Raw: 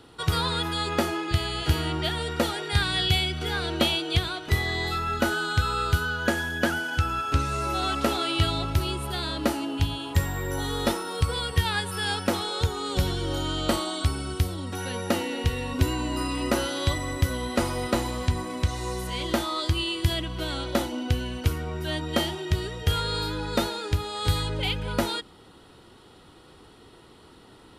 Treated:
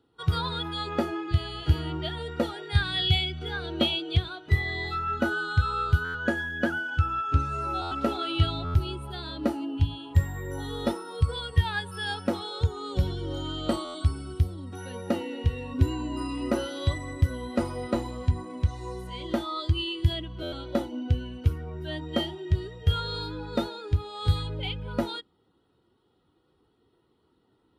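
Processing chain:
high-pass filter 43 Hz 6 dB per octave
buffer that repeats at 0:06.04/0:07.81/0:08.64/0:13.84/0:20.42, samples 512, times 8
every bin expanded away from the loudest bin 1.5 to 1

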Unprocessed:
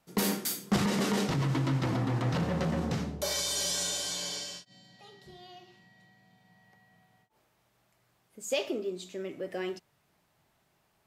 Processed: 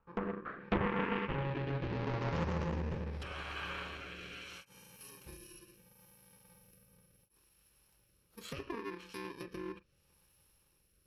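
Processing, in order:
samples in bit-reversed order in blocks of 64 samples
octave-band graphic EQ 125/250/8,000 Hz −12/−9/−12 dB
treble cut that deepens with the level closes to 1,800 Hz, closed at −33 dBFS
rotating-speaker cabinet horn 0.75 Hz
low-pass filter sweep 1,200 Hz → 12,000 Hz, 0:00.29–0:03.60
in parallel at +0.5 dB: downward compressor, threshold −53 dBFS, peak gain reduction 21.5 dB
on the sum: low-shelf EQ 230 Hz +7.5 dB
on a send at −16 dB: convolution reverb, pre-delay 36 ms
on the sum: highs frequency-modulated by the lows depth 0.61 ms

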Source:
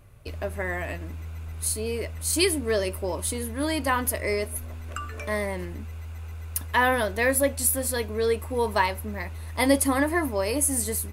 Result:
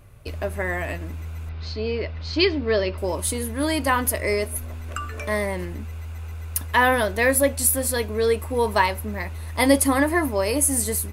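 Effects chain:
0:01.49–0:02.98: Butterworth low-pass 5,000 Hz 48 dB per octave
level +3.5 dB

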